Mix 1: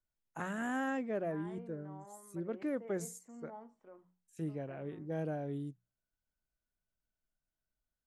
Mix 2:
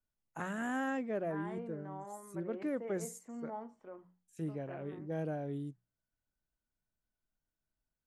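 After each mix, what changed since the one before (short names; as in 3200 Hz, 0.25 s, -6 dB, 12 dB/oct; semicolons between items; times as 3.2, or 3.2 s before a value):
second voice +6.5 dB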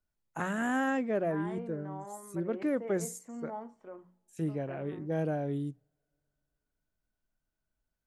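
first voice +5.0 dB; reverb: on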